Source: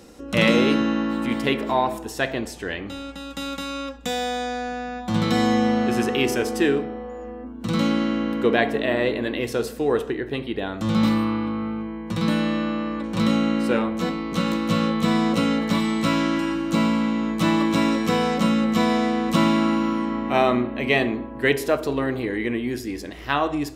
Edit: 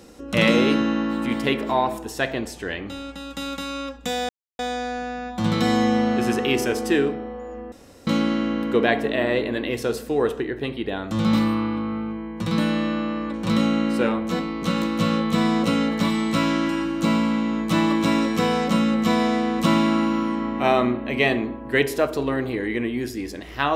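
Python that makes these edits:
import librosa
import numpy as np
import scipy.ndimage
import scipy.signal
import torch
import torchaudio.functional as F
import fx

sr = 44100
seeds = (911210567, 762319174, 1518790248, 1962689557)

y = fx.edit(x, sr, fx.insert_silence(at_s=4.29, length_s=0.3),
    fx.room_tone_fill(start_s=7.42, length_s=0.35), tone=tone)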